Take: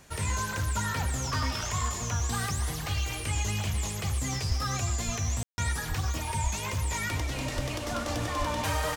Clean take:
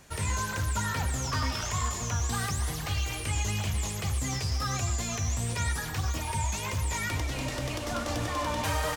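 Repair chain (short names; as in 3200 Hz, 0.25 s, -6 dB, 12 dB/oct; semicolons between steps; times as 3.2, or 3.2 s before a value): de-plosive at 4.48/5.05/5.88/6.43/7.55/8.38; room tone fill 5.43–5.58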